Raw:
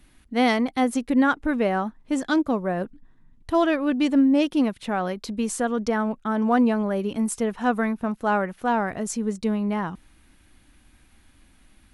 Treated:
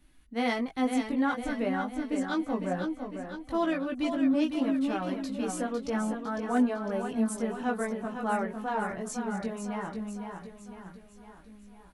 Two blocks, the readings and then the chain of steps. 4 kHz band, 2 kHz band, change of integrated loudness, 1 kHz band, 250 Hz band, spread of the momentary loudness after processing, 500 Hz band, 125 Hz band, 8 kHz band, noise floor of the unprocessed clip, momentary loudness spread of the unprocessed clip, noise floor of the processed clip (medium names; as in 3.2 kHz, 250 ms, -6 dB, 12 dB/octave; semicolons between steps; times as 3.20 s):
-7.0 dB, -7.0 dB, -7.0 dB, -7.0 dB, -6.5 dB, 11 LU, -7.0 dB, -7.0 dB, -7.0 dB, -58 dBFS, 8 LU, -53 dBFS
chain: feedback delay 504 ms, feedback 53%, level -7 dB; chorus voices 6, 0.17 Hz, delay 19 ms, depth 3.8 ms; hard clipper -11.5 dBFS, distortion -42 dB; trim -5 dB